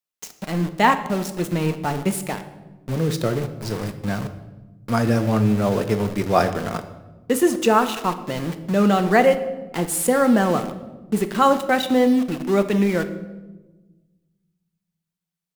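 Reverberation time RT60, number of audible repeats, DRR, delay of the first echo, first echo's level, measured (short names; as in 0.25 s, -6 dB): 1.2 s, none, 8.0 dB, none, none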